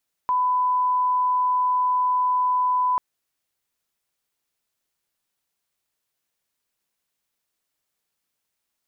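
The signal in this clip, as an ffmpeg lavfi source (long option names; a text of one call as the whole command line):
ffmpeg -f lavfi -i "sine=frequency=1000:duration=2.69:sample_rate=44100,volume=0.06dB" out.wav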